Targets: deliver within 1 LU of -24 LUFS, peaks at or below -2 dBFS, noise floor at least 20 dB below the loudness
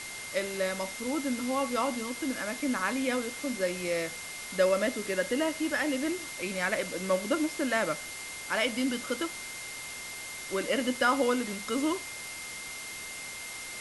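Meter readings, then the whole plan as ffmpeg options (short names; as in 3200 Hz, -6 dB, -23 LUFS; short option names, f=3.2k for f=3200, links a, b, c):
steady tone 2100 Hz; tone level -42 dBFS; noise floor -41 dBFS; noise floor target -51 dBFS; loudness -31.0 LUFS; peak -13.0 dBFS; loudness target -24.0 LUFS
-> -af "bandreject=f=2.1k:w=30"
-af "afftdn=nr=10:nf=-41"
-af "volume=7dB"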